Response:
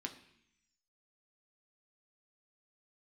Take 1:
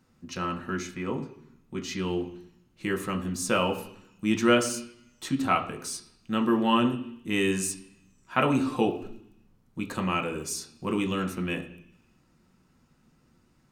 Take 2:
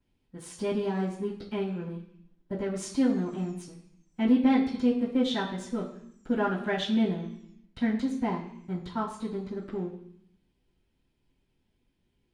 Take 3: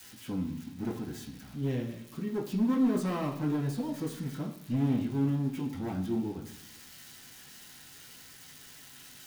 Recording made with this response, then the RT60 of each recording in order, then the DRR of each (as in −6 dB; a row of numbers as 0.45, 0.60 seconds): 1; 0.70, 0.70, 0.70 seconds; 3.0, −15.0, −6.0 decibels